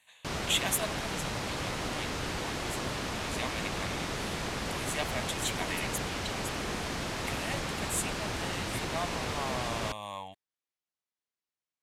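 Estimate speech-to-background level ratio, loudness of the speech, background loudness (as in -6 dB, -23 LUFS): -3.0 dB, -37.5 LUFS, -34.5 LUFS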